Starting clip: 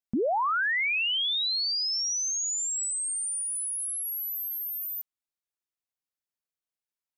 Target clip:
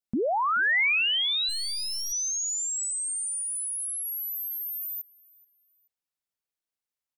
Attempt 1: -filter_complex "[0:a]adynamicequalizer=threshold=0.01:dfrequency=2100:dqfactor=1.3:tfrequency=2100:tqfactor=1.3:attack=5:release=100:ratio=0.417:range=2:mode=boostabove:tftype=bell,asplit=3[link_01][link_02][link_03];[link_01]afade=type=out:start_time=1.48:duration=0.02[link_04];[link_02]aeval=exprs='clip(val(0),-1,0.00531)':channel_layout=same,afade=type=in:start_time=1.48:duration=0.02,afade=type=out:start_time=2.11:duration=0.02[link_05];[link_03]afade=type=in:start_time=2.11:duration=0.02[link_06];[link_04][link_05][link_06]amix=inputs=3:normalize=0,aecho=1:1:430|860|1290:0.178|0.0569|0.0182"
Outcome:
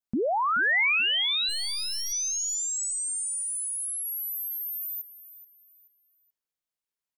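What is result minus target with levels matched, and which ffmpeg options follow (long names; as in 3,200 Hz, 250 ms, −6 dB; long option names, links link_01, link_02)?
echo-to-direct +9.5 dB
-filter_complex "[0:a]adynamicequalizer=threshold=0.01:dfrequency=2100:dqfactor=1.3:tfrequency=2100:tqfactor=1.3:attack=5:release=100:ratio=0.417:range=2:mode=boostabove:tftype=bell,asplit=3[link_01][link_02][link_03];[link_01]afade=type=out:start_time=1.48:duration=0.02[link_04];[link_02]aeval=exprs='clip(val(0),-1,0.00531)':channel_layout=same,afade=type=in:start_time=1.48:duration=0.02,afade=type=out:start_time=2.11:duration=0.02[link_05];[link_03]afade=type=in:start_time=2.11:duration=0.02[link_06];[link_04][link_05][link_06]amix=inputs=3:normalize=0,aecho=1:1:430|860:0.0596|0.0191"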